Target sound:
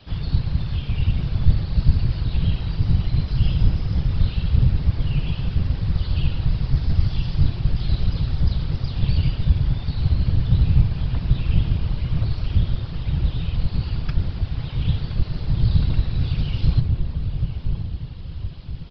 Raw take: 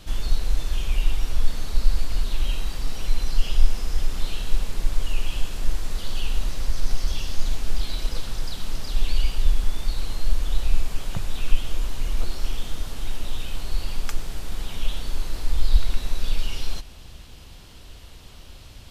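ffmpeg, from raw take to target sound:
-filter_complex "[0:a]aresample=11025,aresample=44100,afreqshift=17,asplit=2[a][b];[b]adelay=1020,lowpass=f=830:p=1,volume=-3dB,asplit=2[c][d];[d]adelay=1020,lowpass=f=830:p=1,volume=0.4,asplit=2[e][f];[f]adelay=1020,lowpass=f=830:p=1,volume=0.4,asplit=2[g][h];[h]adelay=1020,lowpass=f=830:p=1,volume=0.4,asplit=2[i][j];[j]adelay=1020,lowpass=f=830:p=1,volume=0.4[k];[c][e][g][i][k]amix=inputs=5:normalize=0[l];[a][l]amix=inputs=2:normalize=0,afftfilt=real='hypot(re,im)*cos(2*PI*random(0))':imag='hypot(re,im)*sin(2*PI*random(1))':win_size=512:overlap=0.75,volume=4dB"

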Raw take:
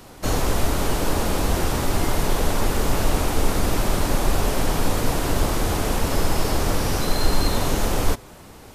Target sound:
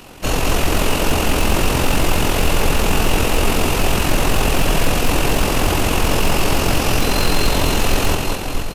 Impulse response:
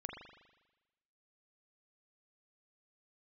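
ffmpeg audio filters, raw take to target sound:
-af "bandreject=f=50:t=h:w=6,bandreject=f=100:t=h:w=6,aecho=1:1:210|483|837.9|1299|1899:0.631|0.398|0.251|0.158|0.1,tremolo=f=44:d=0.462,aeval=exprs='0.224*(abs(mod(val(0)/0.224+3,4)-2)-1)':c=same,equalizer=f=2.7k:t=o:w=0.32:g=10.5,volume=5.5dB"

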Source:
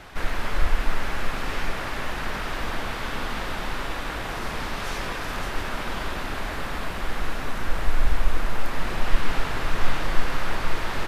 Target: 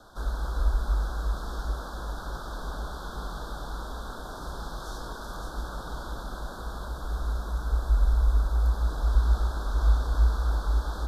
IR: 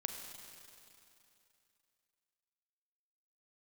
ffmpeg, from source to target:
-af "asuperstop=centerf=2400:order=12:qfactor=1.3,afreqshift=-61,volume=-7dB"

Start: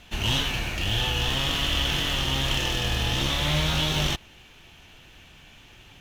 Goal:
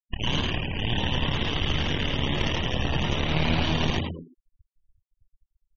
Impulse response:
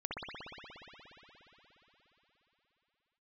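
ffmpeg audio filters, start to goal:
-filter_complex "[0:a]asplit=2[a][b];[b]acrusher=bits=3:mix=0:aa=0.000001,volume=-8dB[c];[a][c]amix=inputs=2:normalize=0,highshelf=f=8.2k:g=-11,acrusher=bits=7:mode=log:mix=0:aa=0.000001,superequalizer=10b=0.631:13b=0.447,aeval=exprs='max(val(0),0)':c=same,asetrate=45938,aresample=44100,adynamicsmooth=sensitivity=7:basefreq=5.7k,bandreject=f=132.9:t=h:w=4,bandreject=f=265.8:t=h:w=4,bandreject=f=398.7:t=h:w=4,bandreject=f=531.6:t=h:w=4,bandreject=f=664.5:t=h:w=4,bandreject=f=797.4:t=h:w=4,bandreject=f=930.3:t=h:w=4,bandreject=f=1.0632k:t=h:w=4,bandreject=f=1.1961k:t=h:w=4,bandreject=f=1.329k:t=h:w=4,bandreject=f=1.4619k:t=h:w=4,asplit=2[d][e];[e]asplit=5[f][g][h][i][j];[f]adelay=102,afreqshift=83,volume=-3.5dB[k];[g]adelay=204,afreqshift=166,volume=-11.7dB[l];[h]adelay=306,afreqshift=249,volume=-19.9dB[m];[i]adelay=408,afreqshift=332,volume=-28dB[n];[j]adelay=510,afreqshift=415,volume=-36.2dB[o];[k][l][m][n][o]amix=inputs=5:normalize=0[p];[d][p]amix=inputs=2:normalize=0,afftfilt=real='re*gte(hypot(re,im),0.0282)':imag='im*gte(hypot(re,im),0.0282)':win_size=1024:overlap=0.75"

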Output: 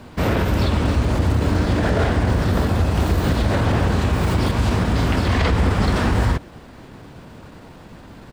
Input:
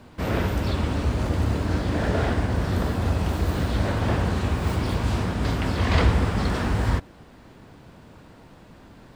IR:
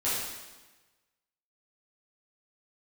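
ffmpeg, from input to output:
-af "alimiter=limit=-16dB:level=0:latency=1:release=79,acontrast=87,atempo=1.1"

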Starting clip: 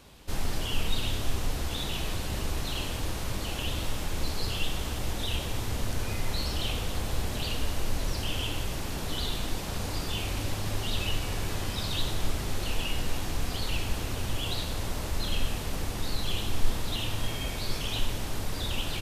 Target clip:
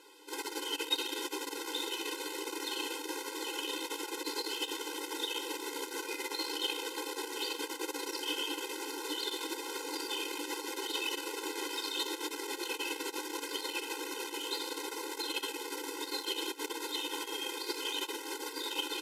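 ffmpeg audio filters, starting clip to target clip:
-af "aeval=exprs='0.316*(cos(1*acos(clip(val(0)/0.316,-1,1)))-cos(1*PI/2))+0.112*(cos(2*acos(clip(val(0)/0.316,-1,1)))-cos(2*PI/2))+0.141*(cos(4*acos(clip(val(0)/0.316,-1,1)))-cos(4*PI/2))+0.0355*(cos(6*acos(clip(val(0)/0.316,-1,1)))-cos(6*PI/2))+0.0112*(cos(8*acos(clip(val(0)/0.316,-1,1)))-cos(8*PI/2))':c=same,afftfilt=real='re*eq(mod(floor(b*sr/1024/270),2),1)':imag='im*eq(mod(floor(b*sr/1024/270),2),1)':win_size=1024:overlap=0.75,volume=1dB"

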